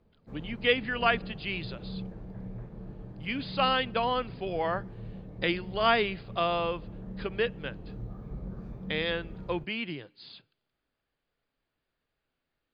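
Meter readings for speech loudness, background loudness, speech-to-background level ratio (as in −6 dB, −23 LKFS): −30.0 LKFS, −43.0 LKFS, 13.0 dB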